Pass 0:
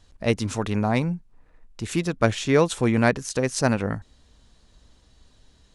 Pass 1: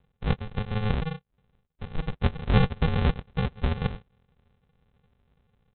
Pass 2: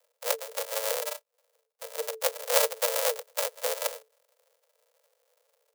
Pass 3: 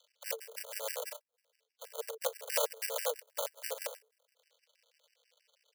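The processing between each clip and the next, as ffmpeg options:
-af "highpass=240,aresample=8000,acrusher=samples=25:mix=1:aa=0.000001,aresample=44100"
-af "acrusher=samples=32:mix=1:aa=0.000001,afreqshift=440,crystalizer=i=8:c=0,volume=-9dB"
-filter_complex "[0:a]acrossover=split=910|2300|4900[a][b][c][d];[c]acompressor=mode=upward:threshold=-47dB:ratio=2.5[e];[a][b][e][d]amix=inputs=4:normalize=0,afftfilt=real='re*gt(sin(2*PI*6.2*pts/sr)*(1-2*mod(floor(b*sr/1024/1500),2)),0)':imag='im*gt(sin(2*PI*6.2*pts/sr)*(1-2*mod(floor(b*sr/1024/1500),2)),0)':win_size=1024:overlap=0.75,volume=-5dB"

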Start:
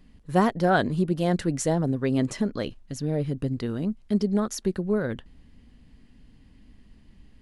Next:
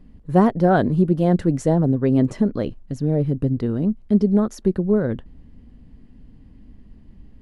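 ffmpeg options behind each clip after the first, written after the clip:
-af "tiltshelf=f=1.3k:g=7.5"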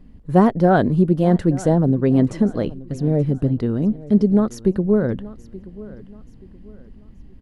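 -af "aecho=1:1:878|1756|2634:0.112|0.0393|0.0137,volume=1.5dB"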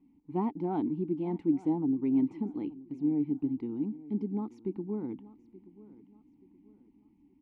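-filter_complex "[0:a]asplit=3[a][b][c];[a]bandpass=f=300:t=q:w=8,volume=0dB[d];[b]bandpass=f=870:t=q:w=8,volume=-6dB[e];[c]bandpass=f=2.24k:t=q:w=8,volume=-9dB[f];[d][e][f]amix=inputs=3:normalize=0,volume=-2.5dB"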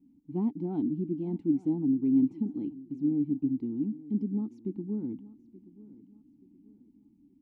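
-af "equalizer=f=125:t=o:w=1:g=5,equalizer=f=250:t=o:w=1:g=7,equalizer=f=500:t=o:w=1:g=-3,equalizer=f=1k:t=o:w=1:g=-8,equalizer=f=2k:t=o:w=1:g=-9,volume=-3.5dB"

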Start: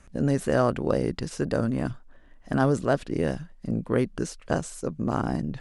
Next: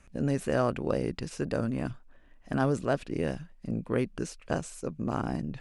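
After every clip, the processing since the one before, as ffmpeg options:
-af "equalizer=f=2.5k:w=4.7:g=6.5,volume=-4.5dB"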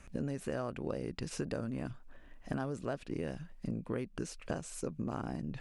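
-af "acompressor=threshold=-37dB:ratio=6,volume=3dB"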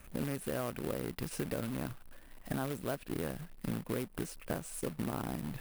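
-af "acrusher=bits=2:mode=log:mix=0:aa=0.000001,highshelf=f=7.6k:g=-10.5,aexciter=amount=5.1:drive=4.7:freq=8.9k"

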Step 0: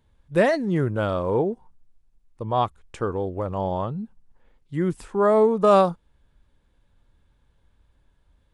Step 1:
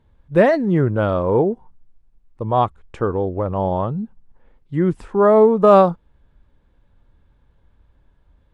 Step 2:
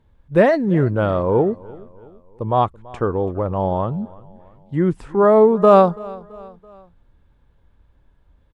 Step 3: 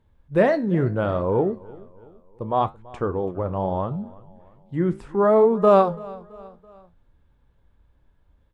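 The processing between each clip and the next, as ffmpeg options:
-af "lowpass=f=1.7k:p=1,volume=6dB"
-af "aecho=1:1:333|666|999:0.0841|0.0404|0.0194"
-af "flanger=delay=9.8:depth=8.5:regen=-71:speed=0.72:shape=triangular"

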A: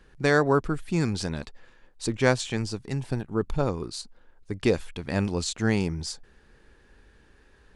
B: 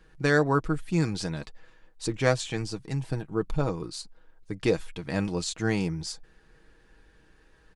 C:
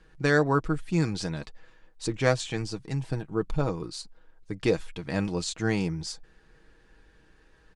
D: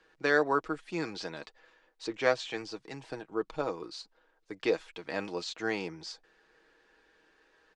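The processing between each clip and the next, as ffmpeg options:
-af "aecho=1:1:6.3:0.48,volume=-2.5dB"
-af "lowpass=9.8k"
-filter_complex "[0:a]acrossover=split=5700[a][b];[b]acompressor=threshold=-54dB:ratio=4:attack=1:release=60[c];[a][c]amix=inputs=2:normalize=0,acrossover=split=300 7800:gain=0.0794 1 0.158[d][e][f];[d][e][f]amix=inputs=3:normalize=0,volume=-1.5dB"

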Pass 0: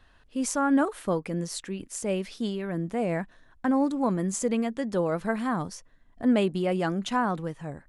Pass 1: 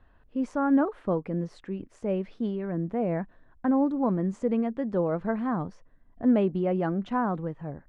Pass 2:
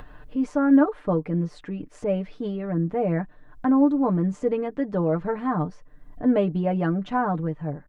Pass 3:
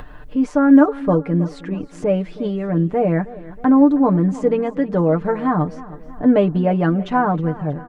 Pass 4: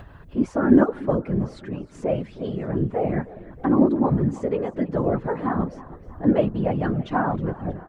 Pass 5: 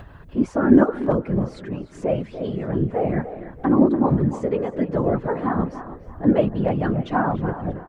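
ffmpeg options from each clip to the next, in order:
-af "lowpass=f=1.2k:p=1,aemphasis=mode=reproduction:type=75fm"
-af "aecho=1:1:6.7:0.71,acompressor=mode=upward:threshold=-34dB:ratio=2.5,volume=2.5dB"
-af "aecho=1:1:318|636|954|1272:0.126|0.0667|0.0354|0.0187,volume=6.5dB"
-af "afftfilt=real='hypot(re,im)*cos(2*PI*random(0))':imag='hypot(re,im)*sin(2*PI*random(1))':win_size=512:overlap=0.75"
-filter_complex "[0:a]asplit=2[a][b];[b]adelay=290,highpass=300,lowpass=3.4k,asoftclip=type=hard:threshold=-11dB,volume=-12dB[c];[a][c]amix=inputs=2:normalize=0,volume=1.5dB"

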